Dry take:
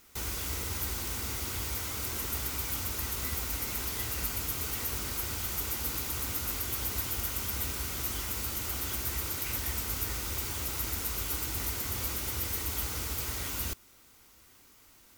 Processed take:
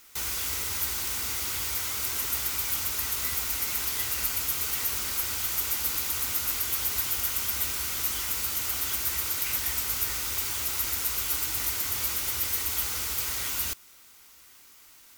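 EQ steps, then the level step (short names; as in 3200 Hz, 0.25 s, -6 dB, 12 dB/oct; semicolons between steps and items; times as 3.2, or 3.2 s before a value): tilt shelf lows -6 dB, about 690 Hz; 0.0 dB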